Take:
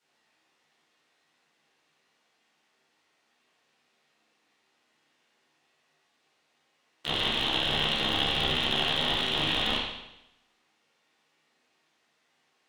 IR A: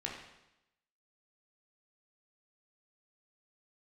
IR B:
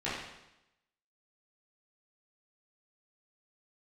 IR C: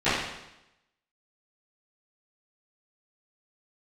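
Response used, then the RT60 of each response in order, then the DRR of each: B; 0.90, 0.90, 0.90 s; -2.0, -11.5, -20.5 dB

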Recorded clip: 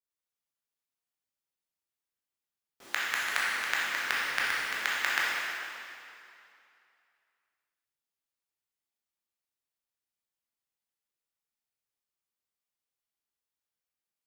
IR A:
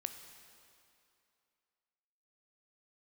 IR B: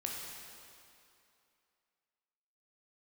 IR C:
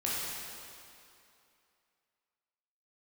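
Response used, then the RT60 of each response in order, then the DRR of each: C; 2.6, 2.6, 2.6 s; 7.0, -2.0, -7.0 dB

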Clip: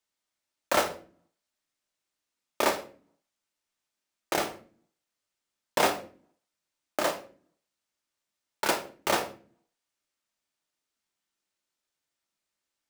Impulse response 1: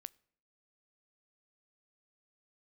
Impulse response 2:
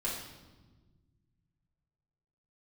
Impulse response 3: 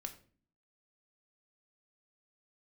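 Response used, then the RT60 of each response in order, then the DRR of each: 3; 0.60, 1.3, 0.45 s; 20.0, -6.5, 4.5 dB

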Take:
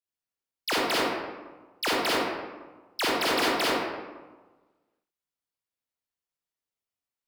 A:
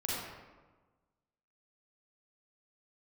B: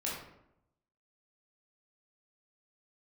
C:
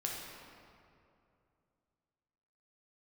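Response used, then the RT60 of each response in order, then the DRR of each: A; 1.3, 0.80, 2.6 s; -6.5, -6.0, -2.5 dB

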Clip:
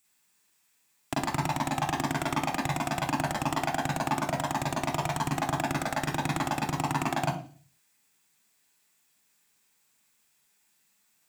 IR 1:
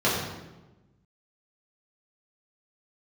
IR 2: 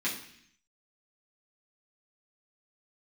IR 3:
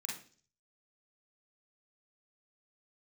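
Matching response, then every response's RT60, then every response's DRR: 3; 1.1, 0.65, 0.45 s; -8.5, -7.5, -4.0 dB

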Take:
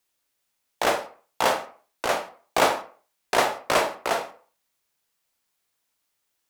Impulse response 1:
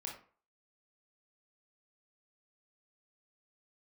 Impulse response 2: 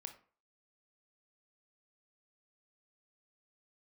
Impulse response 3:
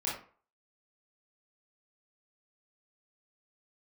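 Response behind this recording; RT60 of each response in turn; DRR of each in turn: 2; 0.40, 0.40, 0.40 s; -1.5, 6.0, -6.5 dB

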